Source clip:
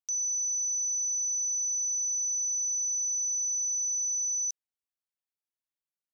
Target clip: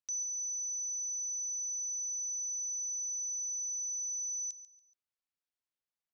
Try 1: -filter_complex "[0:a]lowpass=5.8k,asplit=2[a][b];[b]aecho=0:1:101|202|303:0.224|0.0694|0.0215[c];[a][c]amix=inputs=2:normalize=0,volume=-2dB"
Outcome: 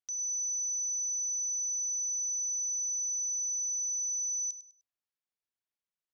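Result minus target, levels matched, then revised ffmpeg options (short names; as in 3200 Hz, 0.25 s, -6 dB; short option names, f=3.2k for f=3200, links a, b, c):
echo 41 ms early
-filter_complex "[0:a]lowpass=5.8k,asplit=2[a][b];[b]aecho=0:1:142|284|426:0.224|0.0694|0.0215[c];[a][c]amix=inputs=2:normalize=0,volume=-2dB"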